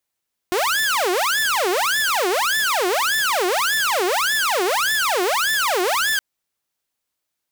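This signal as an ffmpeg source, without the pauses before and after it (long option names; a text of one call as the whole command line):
ffmpeg -f lavfi -i "aevalsrc='0.178*(2*mod((1056.5*t-703.5/(2*PI*1.7)*sin(2*PI*1.7*t)),1)-1)':duration=5.67:sample_rate=44100" out.wav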